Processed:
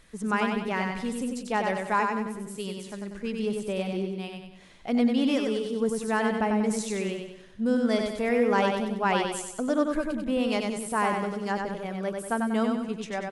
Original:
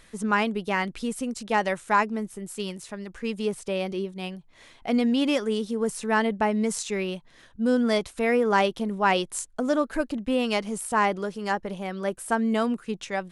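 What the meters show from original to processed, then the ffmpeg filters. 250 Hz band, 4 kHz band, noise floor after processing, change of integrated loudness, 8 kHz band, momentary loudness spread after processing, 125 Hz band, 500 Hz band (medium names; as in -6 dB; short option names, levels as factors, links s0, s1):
-0.5 dB, -3.0 dB, -48 dBFS, -1.5 dB, -3.0 dB, 10 LU, no reading, -1.5 dB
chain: -filter_complex "[0:a]lowshelf=f=490:g=3.5,asplit=2[s0][s1];[s1]aecho=0:1:95|190|285|380|475|570:0.631|0.29|0.134|0.0614|0.0283|0.013[s2];[s0][s2]amix=inputs=2:normalize=0,volume=0.562"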